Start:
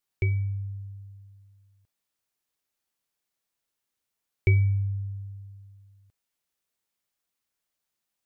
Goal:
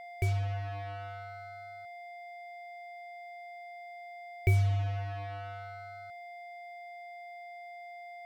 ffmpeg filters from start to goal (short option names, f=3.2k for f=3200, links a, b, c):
-af "aeval=exprs='val(0)+0.0158*sin(2*PI*700*n/s)':c=same,acrusher=bits=5:mix=0:aa=0.5,volume=-4.5dB"